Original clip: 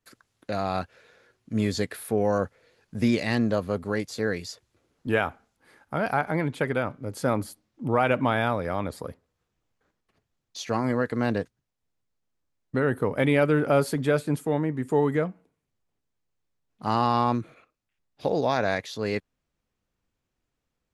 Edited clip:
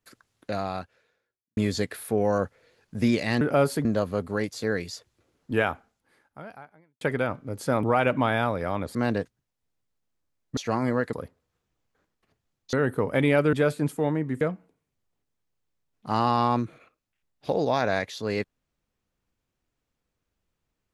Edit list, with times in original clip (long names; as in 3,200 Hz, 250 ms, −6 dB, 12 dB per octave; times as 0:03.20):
0:00.51–0:01.57: fade out quadratic
0:05.24–0:06.57: fade out quadratic
0:07.39–0:07.87: remove
0:08.99–0:10.59: swap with 0:11.15–0:12.77
0:13.57–0:14.01: move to 0:03.41
0:14.89–0:15.17: remove